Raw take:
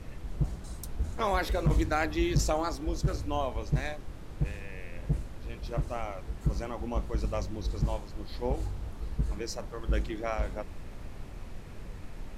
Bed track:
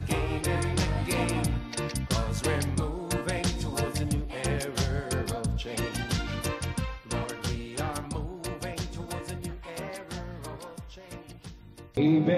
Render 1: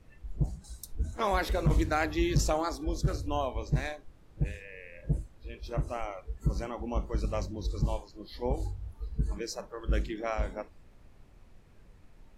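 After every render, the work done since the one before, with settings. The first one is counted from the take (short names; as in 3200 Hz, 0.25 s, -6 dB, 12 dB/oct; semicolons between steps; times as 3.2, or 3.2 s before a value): noise print and reduce 14 dB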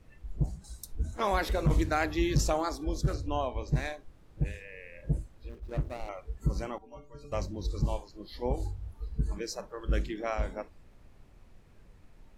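3.14–3.68 air absorption 58 m; 5.49–6.09 median filter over 41 samples; 6.78–7.32 metallic resonator 140 Hz, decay 0.37 s, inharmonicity 0.008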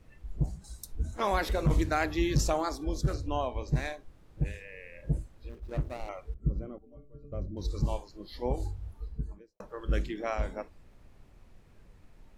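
6.34–7.57 running mean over 49 samples; 8.87–9.6 studio fade out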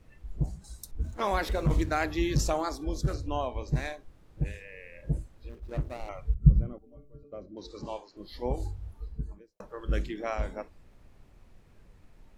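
0.91–1.95 backlash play -51.5 dBFS; 6.11–6.73 resonant low shelf 210 Hz +10 dB, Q 1.5; 7.23–8.17 three-band isolator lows -21 dB, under 230 Hz, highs -23 dB, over 6500 Hz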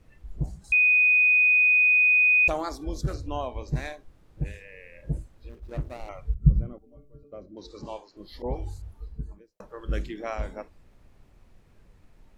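0.72–2.48 bleep 2490 Hz -16 dBFS; 8.42–8.82 dispersion highs, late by 0.138 s, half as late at 2400 Hz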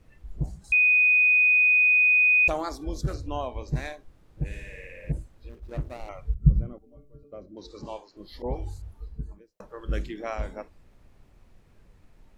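4.45–5.12 flutter echo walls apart 9.6 m, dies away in 1.3 s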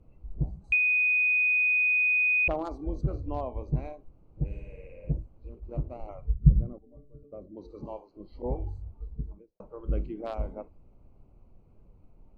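Wiener smoothing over 25 samples; treble ducked by the level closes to 2400 Hz, closed at -19 dBFS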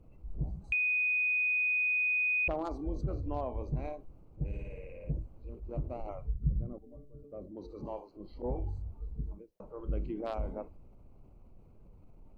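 transient shaper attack -3 dB, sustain +3 dB; compressor 2.5:1, threshold -31 dBFS, peak gain reduction 12 dB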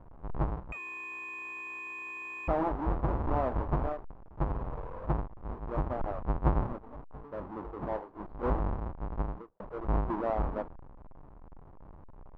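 half-waves squared off; synth low-pass 1000 Hz, resonance Q 2.3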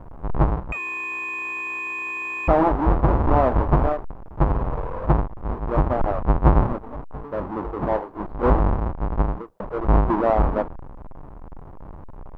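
gain +12 dB; limiter -3 dBFS, peak gain reduction 1.5 dB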